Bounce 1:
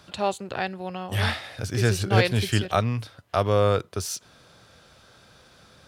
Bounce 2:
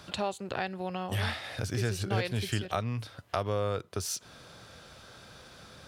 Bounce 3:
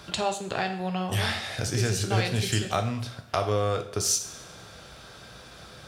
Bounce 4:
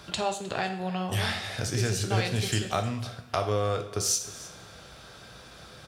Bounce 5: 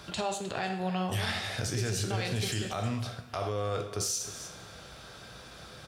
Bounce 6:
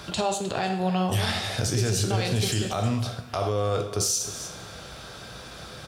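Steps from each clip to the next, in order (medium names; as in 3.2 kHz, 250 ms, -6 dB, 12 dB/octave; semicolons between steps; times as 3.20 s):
compression 2.5:1, threshold -35 dBFS, peak gain reduction 14.5 dB; trim +2.5 dB
dynamic bell 6.7 kHz, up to +7 dB, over -56 dBFS, Q 1.2; reverberation, pre-delay 3 ms, DRR 5 dB; trim +3.5 dB
delay 311 ms -18.5 dB; trim -1.5 dB
peak limiter -22 dBFS, peak gain reduction 10.5 dB
dynamic bell 1.9 kHz, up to -5 dB, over -52 dBFS, Q 1.3; trim +7 dB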